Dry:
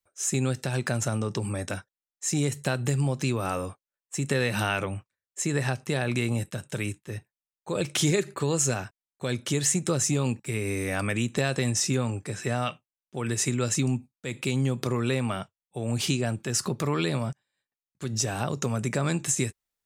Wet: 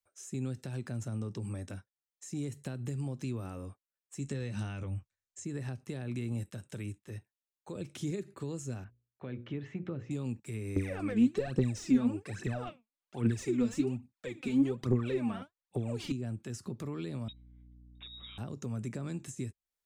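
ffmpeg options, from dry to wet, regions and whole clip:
ffmpeg -i in.wav -filter_complex "[0:a]asettb=1/sr,asplit=3[link_01][link_02][link_03];[link_01]atrim=end=4.194[link_04];[link_02]atrim=start=4.19:end=5.45,asetpts=PTS-STARTPTS,afade=type=in:duration=0.004:curve=qsin,afade=type=out:start_time=1.256:duration=0.004:curve=qsin,asubboost=boost=8.5:cutoff=150,lowpass=frequency=7000:width_type=q:width=2,asplit=2[link_05][link_06];[link_06]adelay=14,volume=-11dB[link_07];[link_05][link_07]amix=inputs=2:normalize=0,atrim=end_sample=55566[link_08];[link_03]atrim=start=5.446[link_09];[link_04][link_08]acrossfade=duration=0.004:curve1=hsin:curve2=qsin[link_10];[link_10][link_09]acrossfade=duration=0.004:curve1=qsin:curve2=hsin,asettb=1/sr,asplit=3[link_11][link_12][link_13];[link_11]atrim=end=8.844[link_14];[link_12]atrim=start=8.84:end=10.11,asetpts=PTS-STARTPTS,afade=type=in:duration=0.004:curve=qsin,afade=type=out:start_time=1.266:duration=0.004:curve=qsin,lowpass=frequency=2700:width=0.5412,lowpass=frequency=2700:width=1.3066,bandreject=frequency=60:width_type=h:width=6,bandreject=frequency=120:width_type=h:width=6,bandreject=frequency=180:width_type=h:width=6,bandreject=frequency=240:width_type=h:width=6,bandreject=frequency=300:width_type=h:width=6,bandreject=frequency=360:width_type=h:width=6,bandreject=frequency=420:width_type=h:width=6,bandreject=frequency=480:width_type=h:width=6,bandreject=frequency=540:width_type=h:width=6[link_15];[link_13]atrim=start=10.106[link_16];[link_14][link_15]acrossfade=duration=0.004:curve1=hsin:curve2=qsin[link_17];[link_17][link_16]acrossfade=duration=0.004:curve1=qsin:curve2=hsin,asettb=1/sr,asplit=3[link_18][link_19][link_20];[link_18]atrim=end=10.764[link_21];[link_19]atrim=start=10.76:end=16.12,asetpts=PTS-STARTPTS,afade=type=in:duration=0.004:curve=qsin,afade=type=out:start_time=5.356:duration=0.004:curve=qsin,aphaser=in_gain=1:out_gain=1:delay=4.7:decay=0.78:speed=1.2:type=triangular,asplit=2[link_22][link_23];[link_23]highpass=frequency=720:poles=1,volume=19dB,asoftclip=type=tanh:threshold=-2.5dB[link_24];[link_22][link_24]amix=inputs=2:normalize=0,lowpass=frequency=2300:poles=1,volume=-6dB[link_25];[link_20]atrim=start=16.116[link_26];[link_21][link_25]acrossfade=duration=0.004:curve1=hsin:curve2=qsin[link_27];[link_27][link_26]acrossfade=duration=0.004:curve1=qsin:curve2=hsin,asettb=1/sr,asplit=3[link_28][link_29][link_30];[link_28]atrim=end=17.284[link_31];[link_29]atrim=start=17.28:end=18.38,asetpts=PTS-STARTPTS,afade=type=in:duration=0.004:curve=qsin,afade=type=out:start_time=1.096:duration=0.004:curve=qsin,lowpass=frequency=3300:width_type=q:width=0.5098,lowpass=frequency=3300:width_type=q:width=0.6013,lowpass=frequency=3300:width_type=q:width=0.9,lowpass=frequency=3300:width_type=q:width=2.563,afreqshift=-3900,aeval=exprs='val(0)+0.00398*(sin(2*PI*60*n/s)+sin(2*PI*2*60*n/s)/2+sin(2*PI*3*60*n/s)/3+sin(2*PI*4*60*n/s)/4+sin(2*PI*5*60*n/s)/5)':channel_layout=same[link_32];[link_30]atrim=start=18.376[link_33];[link_31][link_32]acrossfade=duration=0.004:curve1=hsin:curve2=qsin[link_34];[link_34][link_33]acrossfade=duration=0.004:curve1=qsin:curve2=hsin,equalizer=frequency=150:width=2.8:gain=-7,acrossover=split=320[link_35][link_36];[link_36]acompressor=threshold=-47dB:ratio=3[link_37];[link_35][link_37]amix=inputs=2:normalize=0,volume=-5dB" out.wav

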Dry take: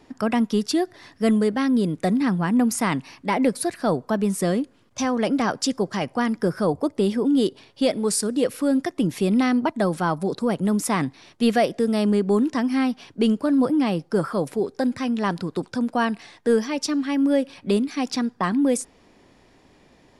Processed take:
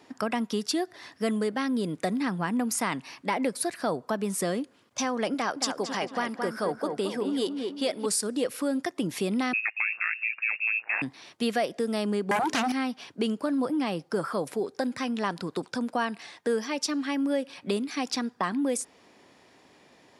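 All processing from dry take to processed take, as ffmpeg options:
ffmpeg -i in.wav -filter_complex "[0:a]asettb=1/sr,asplit=3[link_01][link_02][link_03];[link_01]atrim=end=5.344[link_04];[link_02]atrim=start=5.34:end=8.06,asetpts=PTS-STARTPTS,afade=type=in:duration=0.004:curve=qsin,afade=type=out:start_time=2.716:duration=0.004:curve=qsin,lowshelf=frequency=240:gain=-8.5,asplit=2[link_05][link_06];[link_06]adelay=221,lowpass=frequency=2400:poles=1,volume=-6dB,asplit=2[link_07][link_08];[link_08]adelay=221,lowpass=frequency=2400:poles=1,volume=0.41,asplit=2[link_09][link_10];[link_10]adelay=221,lowpass=frequency=2400:poles=1,volume=0.41,asplit=2[link_11][link_12];[link_12]adelay=221,lowpass=frequency=2400:poles=1,volume=0.41,asplit=2[link_13][link_14];[link_14]adelay=221,lowpass=frequency=2400:poles=1,volume=0.41[link_15];[link_05][link_07][link_09][link_11][link_13][link_15]amix=inputs=6:normalize=0,atrim=end_sample=119952[link_16];[link_03]atrim=start=8.056[link_17];[link_04][link_16]acrossfade=duration=0.004:curve1=hsin:curve2=qsin[link_18];[link_18][link_17]acrossfade=duration=0.004:curve1=qsin:curve2=hsin,asettb=1/sr,asplit=3[link_19][link_20][link_21];[link_19]atrim=end=9.534[link_22];[link_20]atrim=start=9.53:end=11.02,asetpts=PTS-STARTPTS,afade=type=in:duration=0.004:curve=qsin,afade=type=out:start_time=1.486:duration=0.004:curve=qsin,tremolo=f=110:d=0.919,lowpass=frequency=2400:width_type=q:width=0.5098,lowpass=frequency=2400:width_type=q:width=0.6013,lowpass=frequency=2400:width_type=q:width=0.9,lowpass=frequency=2400:width_type=q:width=2.563,afreqshift=-2800[link_23];[link_21]atrim=start=11.016[link_24];[link_22][link_23]acrossfade=duration=0.004:curve1=hsin:curve2=qsin[link_25];[link_25][link_24]acrossfade=duration=0.004:curve1=qsin:curve2=hsin,asettb=1/sr,asplit=3[link_26][link_27][link_28];[link_26]atrim=end=12.314[link_29];[link_27]atrim=start=12.31:end=12.72,asetpts=PTS-STARTPTS,afade=type=in:duration=0.004:curve=qsin,afade=type=out:start_time=0.406:duration=0.004:curve=qsin,agate=range=-33dB:threshold=-33dB:ratio=3:release=100:detection=peak,acompressor=threshold=-31dB:ratio=1.5:attack=3.2:release=140:knee=1:detection=peak,aeval=exprs='0.178*sin(PI/2*4.47*val(0)/0.178)':channel_layout=same[link_30];[link_28]atrim=start=12.716[link_31];[link_29][link_30]acrossfade=duration=0.004:curve1=hsin:curve2=qsin[link_32];[link_32][link_31]acrossfade=duration=0.004:curve1=qsin:curve2=hsin,highpass=95,lowshelf=frequency=320:gain=-9,acompressor=threshold=-28dB:ratio=2,volume=1dB" out.wav

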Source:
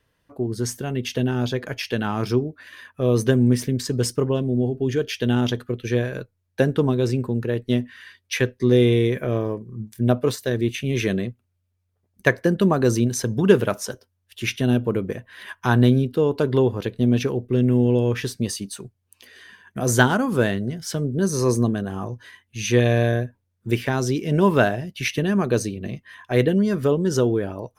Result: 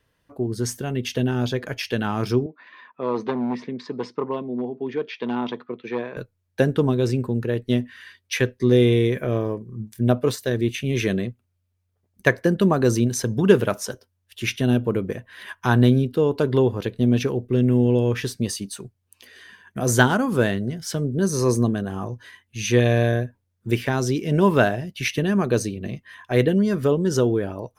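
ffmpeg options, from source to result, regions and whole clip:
ffmpeg -i in.wav -filter_complex "[0:a]asettb=1/sr,asplit=3[link_01][link_02][link_03];[link_01]atrim=end=2.464[link_04];[link_02]atrim=start=2.46:end=6.17,asetpts=PTS-STARTPTS,afade=type=in:duration=0.004:curve=qsin,afade=type=out:start_time=3.706:duration=0.004:curve=qsin,asoftclip=type=hard:threshold=-13.5dB,highpass=frequency=210:width=0.5412,highpass=frequency=210:width=1.3066,equalizer=frequency=270:width_type=q:width=4:gain=-5,equalizer=frequency=380:width_type=q:width=4:gain=-4,equalizer=frequency=560:width_type=q:width=4:gain=-5,equalizer=frequency=990:width_type=q:width=4:gain=8,equalizer=frequency=1600:width_type=q:width=4:gain=-7,equalizer=frequency=3000:width_type=q:width=4:gain=-9,lowpass=frequency=3500:width=0.5412,lowpass=frequency=3500:width=1.3066[link_05];[link_03]atrim=start=6.166[link_06];[link_04][link_05]acrossfade=duration=0.004:curve1=hsin:curve2=qsin[link_07];[link_07][link_06]acrossfade=duration=0.004:curve1=qsin:curve2=hsin" out.wav

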